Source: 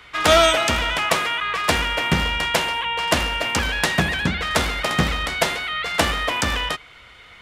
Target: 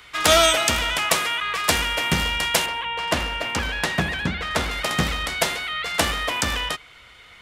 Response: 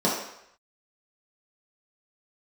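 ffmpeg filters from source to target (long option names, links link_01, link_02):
-af "asetnsamples=nb_out_samples=441:pad=0,asendcmd='2.66 highshelf g -3;4.71 highshelf g 6.5',highshelf=frequency=4700:gain=11,volume=-3dB"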